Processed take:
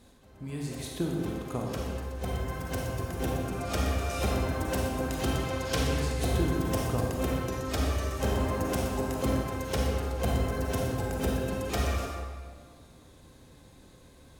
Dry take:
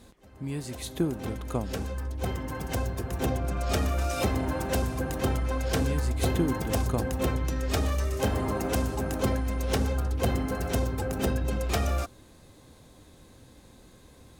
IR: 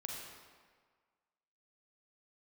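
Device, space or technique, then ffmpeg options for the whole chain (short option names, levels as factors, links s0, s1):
stairwell: -filter_complex "[0:a]asettb=1/sr,asplit=3[s0][s1][s2];[s0]atrim=end=5.034[s3];[s1]atrim=start=5.03:end=6.17,asetpts=PTS-STARTPTS,afade=t=in:d=0.004:c=qsin,afade=t=out:st=1.136:d=0.004:c=qsin,equalizer=f=4200:t=o:w=2:g=5.5[s4];[s2]atrim=start=6.166[s5];[s3][s4]acrossfade=d=0.004:c1=hsin:c2=qsin[s6];[s6][s5]acrossfade=d=0.004:c1=qsin:c2=hsin[s7];[1:a]atrim=start_sample=2205[s8];[s7][s8]afir=irnorm=-1:irlink=0"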